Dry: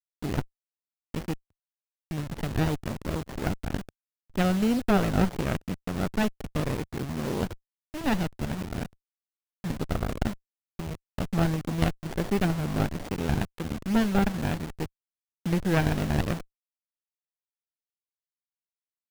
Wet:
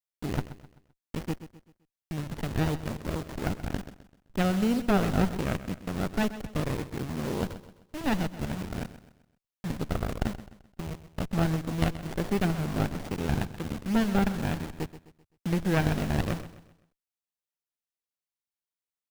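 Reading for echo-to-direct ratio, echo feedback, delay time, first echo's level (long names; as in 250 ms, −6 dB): −13.0 dB, 40%, 129 ms, −14.0 dB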